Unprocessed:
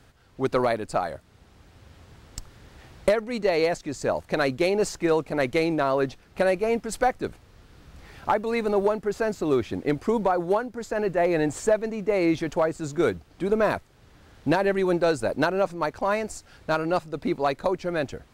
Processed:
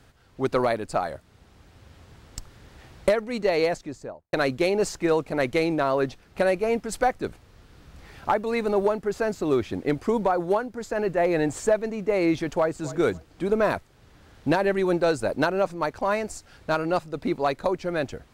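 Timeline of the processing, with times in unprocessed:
3.63–4.33 studio fade out
12.49–12.9 echo throw 0.27 s, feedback 20%, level -16.5 dB

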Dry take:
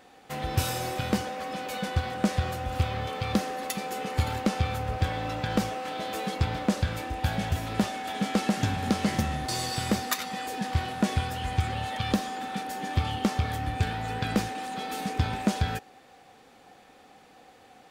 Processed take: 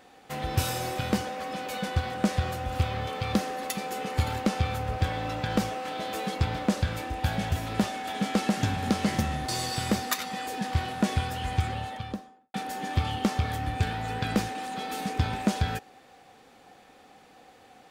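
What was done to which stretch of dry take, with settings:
11.55–12.54 studio fade out

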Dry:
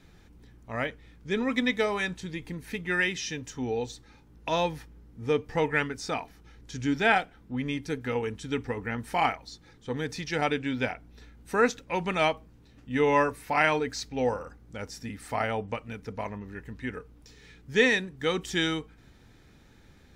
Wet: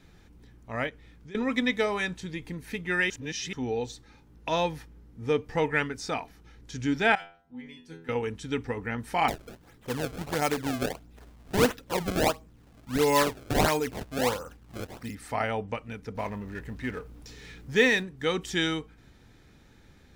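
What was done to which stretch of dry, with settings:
0.89–1.35 compressor 5:1, threshold -44 dBFS
3.1–3.53 reverse
7.15–8.09 metallic resonator 81 Hz, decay 0.63 s, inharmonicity 0.002
9.28–15.15 decimation with a swept rate 27×, swing 160% 1.5 Hz
16.15–18.03 G.711 law mismatch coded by mu

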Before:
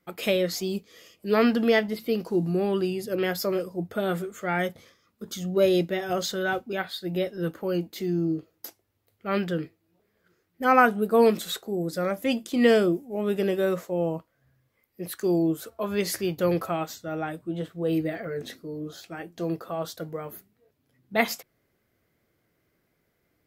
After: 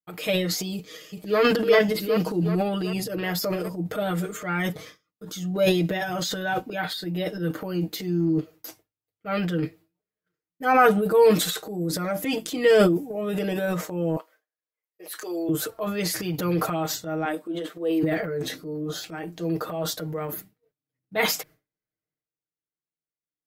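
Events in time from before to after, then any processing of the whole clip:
0.74–1.4 echo throw 0.38 s, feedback 60%, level -3 dB
14.16–15.49 HPF 410 Hz 24 dB/oct
17.25–18.03 HPF 280 Hz 24 dB/oct
whole clip: expander -50 dBFS; comb 6.5 ms, depth 96%; transient shaper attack -2 dB, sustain +10 dB; gain -2 dB

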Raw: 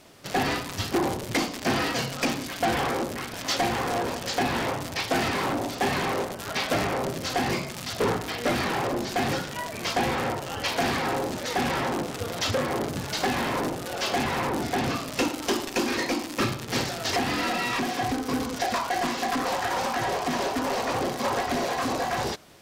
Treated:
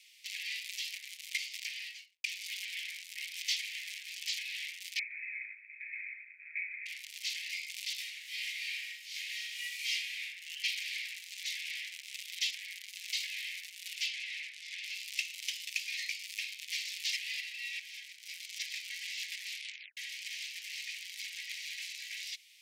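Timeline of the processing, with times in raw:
1.6–2.24 studio fade out
4.99–6.86 brick-wall FIR low-pass 2600 Hz
7.95–10.23 reverb throw, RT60 0.9 s, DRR -8.5 dB
14.06–14.83 air absorption 56 m
17.4–18.2 tilt shelf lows +5 dB
19.49 tape stop 0.48 s
whole clip: high shelf 3000 Hz -11 dB; compressor, threshold -28 dBFS; steep high-pass 2100 Hz 72 dB/oct; gain +4.5 dB

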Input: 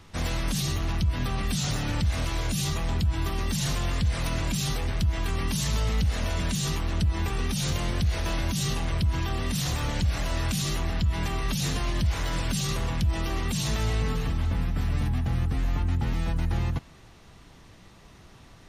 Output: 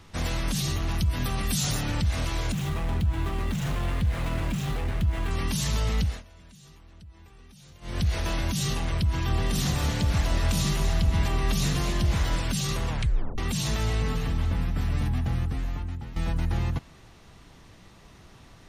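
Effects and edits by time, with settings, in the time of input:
0.91–1.81 bell 13000 Hz +10 dB 1.2 oct
2.52–5.31 median filter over 9 samples
6.02–8.02 dip -23.5 dB, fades 0.21 s
9.14–12.36 echo with dull and thin repeats by turns 0.12 s, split 830 Hz, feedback 54%, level -2.5 dB
12.9 tape stop 0.48 s
13.89–14.32 echo throw 0.22 s, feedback 10%, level -15.5 dB
15.27–16.16 fade out, to -14.5 dB

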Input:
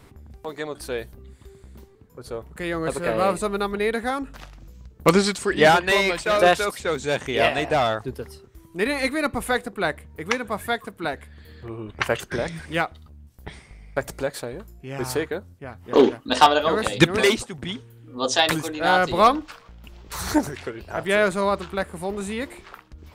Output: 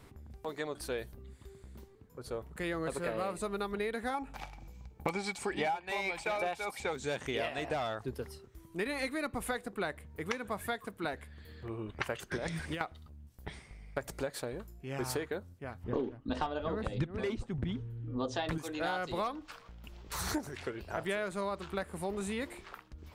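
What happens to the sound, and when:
4.14–6.93 small resonant body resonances 820/2300 Hz, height 15 dB, ringing for 30 ms
12.36–12.81 negative-ratio compressor -29 dBFS
15.84–18.58 RIAA curve playback
whole clip: compressor 12:1, threshold -25 dBFS; gain -6 dB

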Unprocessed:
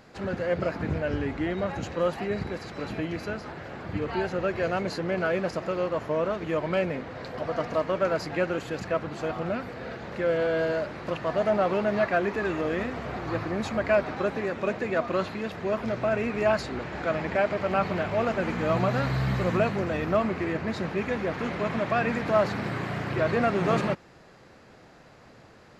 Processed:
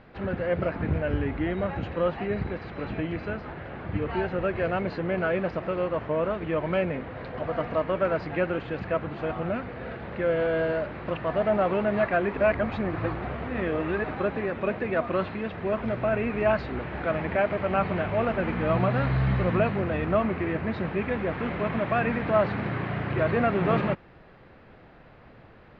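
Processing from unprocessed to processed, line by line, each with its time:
12.37–14.04 reverse
whole clip: LPF 3300 Hz 24 dB/oct; low shelf 64 Hz +12 dB

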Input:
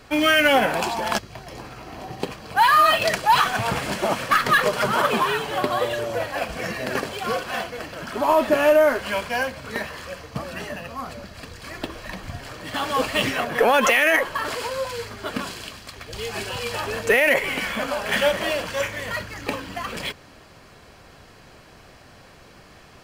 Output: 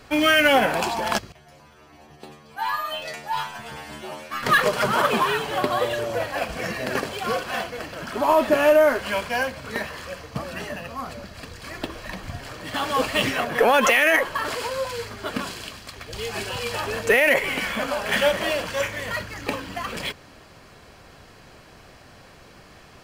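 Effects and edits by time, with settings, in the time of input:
1.32–4.43 metallic resonator 73 Hz, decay 0.62 s, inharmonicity 0.002

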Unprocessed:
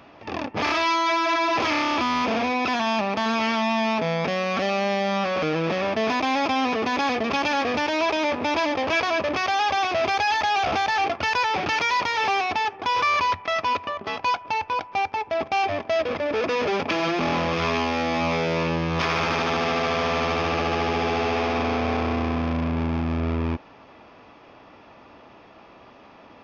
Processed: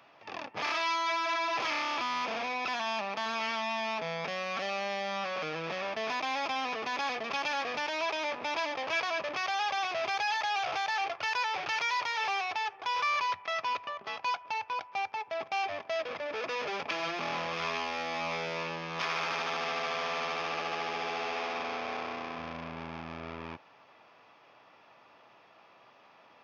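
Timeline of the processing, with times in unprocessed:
10.3–13.3 bell 220 Hz -11.5 dB 0.52 oct
18.49–22.38 bell 65 Hz -13 dB 1.1 oct
whole clip: HPF 130 Hz 24 dB/oct; bell 250 Hz -12.5 dB 1.8 oct; gain -7 dB

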